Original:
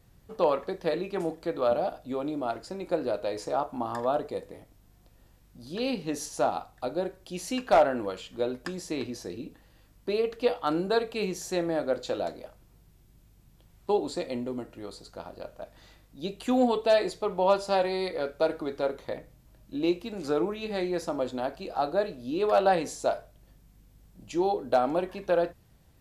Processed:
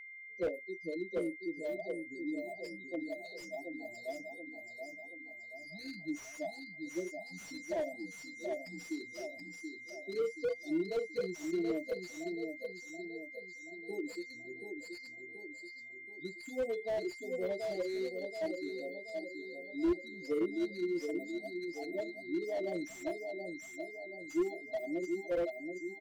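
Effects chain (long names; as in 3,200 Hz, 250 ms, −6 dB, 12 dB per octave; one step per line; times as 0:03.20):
one scale factor per block 5 bits
high-pass filter 390 Hz 12 dB per octave
noise reduction from a noise print of the clip's start 27 dB
inverse Chebyshev band-stop filter 960–2,500 Hz, stop band 50 dB
comb filter 6.1 ms, depth 93%
dynamic equaliser 2,100 Hz, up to −4 dB, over −51 dBFS, Q 1.1
spectral peaks only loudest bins 16
on a send: repeating echo 729 ms, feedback 51%, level −6 dB
on the sum: steady tone 2,100 Hz −44 dBFS
slew-rate limiting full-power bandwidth 25 Hz
level −3.5 dB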